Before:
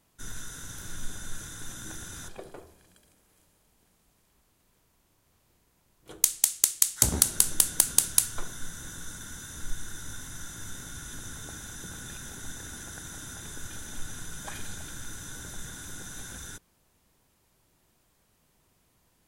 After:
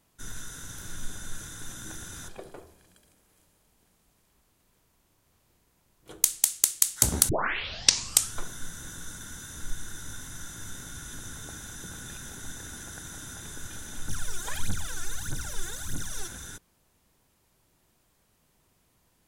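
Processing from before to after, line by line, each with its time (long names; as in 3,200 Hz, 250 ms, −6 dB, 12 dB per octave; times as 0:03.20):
0:07.29: tape start 1.05 s
0:14.08–0:16.28: phase shifter 1.6 Hz, feedback 80%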